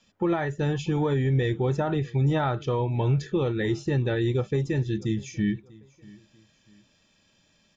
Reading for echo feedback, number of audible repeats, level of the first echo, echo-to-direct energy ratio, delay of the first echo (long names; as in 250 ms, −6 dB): 36%, 2, −23.0 dB, −22.5 dB, 642 ms